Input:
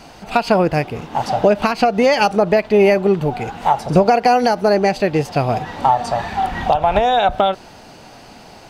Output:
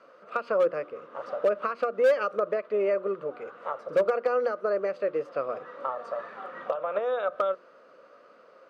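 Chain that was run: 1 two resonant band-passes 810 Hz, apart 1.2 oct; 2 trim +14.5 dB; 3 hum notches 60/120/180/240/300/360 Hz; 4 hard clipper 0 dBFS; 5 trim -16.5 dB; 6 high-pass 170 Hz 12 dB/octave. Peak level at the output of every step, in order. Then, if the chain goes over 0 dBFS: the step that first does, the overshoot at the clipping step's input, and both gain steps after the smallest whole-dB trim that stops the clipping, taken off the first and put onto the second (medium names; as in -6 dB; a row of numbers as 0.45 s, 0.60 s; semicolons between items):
-8.5 dBFS, +6.0 dBFS, +6.0 dBFS, 0.0 dBFS, -16.5 dBFS, -13.5 dBFS; step 2, 6.0 dB; step 2 +8.5 dB, step 5 -10.5 dB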